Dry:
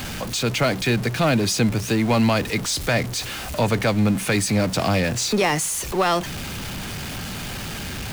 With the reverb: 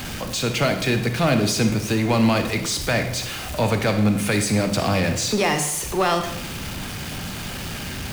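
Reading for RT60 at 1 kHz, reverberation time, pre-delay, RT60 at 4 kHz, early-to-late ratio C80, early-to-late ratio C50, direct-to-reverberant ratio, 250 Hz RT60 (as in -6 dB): 0.75 s, 0.75 s, 28 ms, 0.70 s, 10.5 dB, 8.0 dB, 6.0 dB, 0.85 s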